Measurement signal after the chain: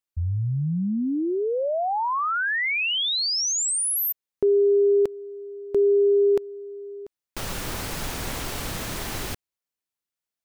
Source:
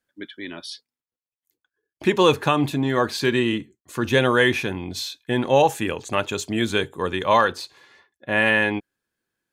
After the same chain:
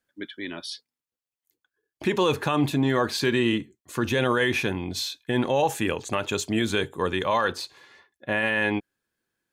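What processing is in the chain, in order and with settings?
brickwall limiter −13 dBFS

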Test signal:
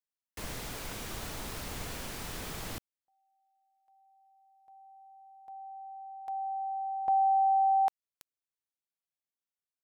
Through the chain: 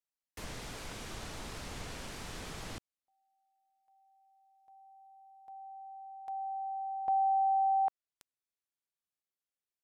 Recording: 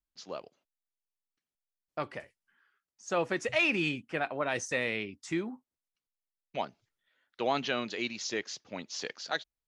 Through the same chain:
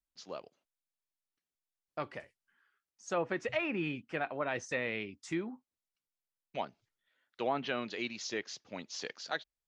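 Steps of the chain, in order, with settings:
treble cut that deepens with the level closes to 1,700 Hz, closed at −24.5 dBFS
level −3 dB

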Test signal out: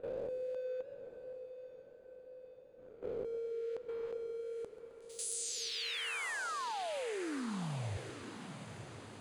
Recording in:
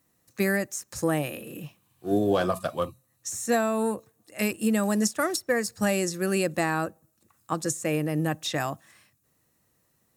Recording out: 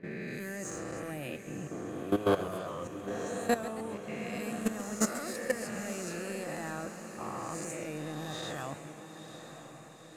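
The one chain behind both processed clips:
peak hold with a rise ahead of every peak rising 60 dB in 1.54 s
low-pass that shuts in the quiet parts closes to 1,100 Hz, open at −19 dBFS
low-shelf EQ 350 Hz +2.5 dB
leveller curve on the samples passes 1
output level in coarse steps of 16 dB
notch filter 5,500 Hz, Q 8.4
on a send: feedback delay with all-pass diffusion 951 ms, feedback 58%, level −10 dB
on the sum: feedback echo with a swinging delay time 133 ms, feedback 58%, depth 183 cents, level −13.5 dB
level −7.5 dB

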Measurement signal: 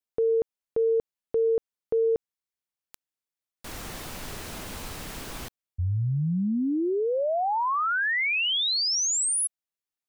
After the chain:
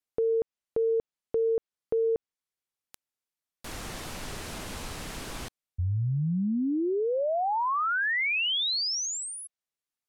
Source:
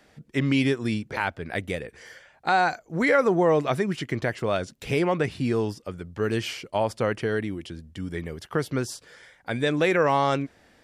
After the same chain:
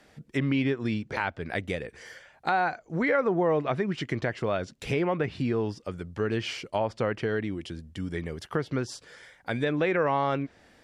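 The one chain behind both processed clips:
treble cut that deepens with the level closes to 2,900 Hz, closed at −20 dBFS
downward compressor 1.5 to 1, threshold −28 dBFS

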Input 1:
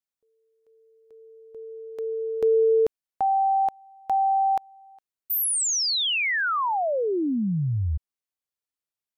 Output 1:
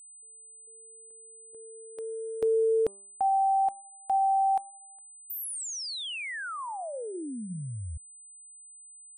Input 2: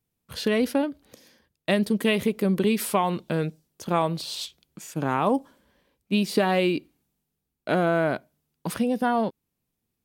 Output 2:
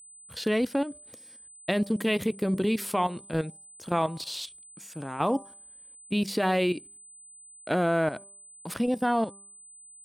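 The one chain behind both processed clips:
output level in coarse steps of 12 dB
hum removal 197.6 Hz, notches 6
steady tone 8,100 Hz −48 dBFS

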